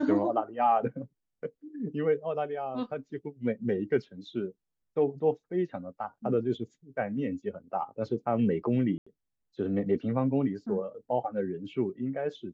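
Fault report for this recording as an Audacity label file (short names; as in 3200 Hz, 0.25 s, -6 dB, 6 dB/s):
8.980000	9.060000	gap 85 ms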